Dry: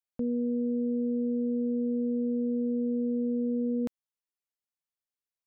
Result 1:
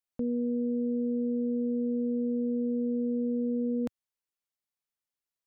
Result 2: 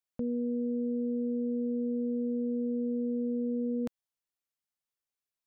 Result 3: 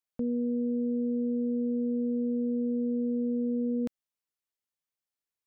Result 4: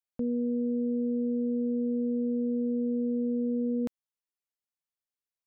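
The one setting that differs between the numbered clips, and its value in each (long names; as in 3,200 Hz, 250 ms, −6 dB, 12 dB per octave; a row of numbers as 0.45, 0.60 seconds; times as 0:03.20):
dynamic equaliser, frequency: 110, 320, 900, 6,900 Hertz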